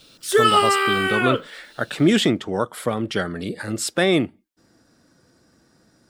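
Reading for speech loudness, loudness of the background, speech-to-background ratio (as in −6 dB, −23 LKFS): −23.0 LKFS, −19.0 LKFS, −4.0 dB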